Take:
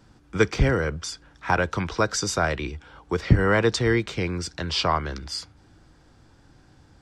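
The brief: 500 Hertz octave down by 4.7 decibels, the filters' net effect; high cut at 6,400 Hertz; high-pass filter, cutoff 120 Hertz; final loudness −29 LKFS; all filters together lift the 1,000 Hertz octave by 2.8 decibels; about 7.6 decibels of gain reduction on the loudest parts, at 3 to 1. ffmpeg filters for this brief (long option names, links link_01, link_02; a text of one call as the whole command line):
ffmpeg -i in.wav -af "highpass=120,lowpass=6400,equalizer=frequency=500:width_type=o:gain=-7,equalizer=frequency=1000:width_type=o:gain=5.5,acompressor=threshold=-24dB:ratio=3,volume=0.5dB" out.wav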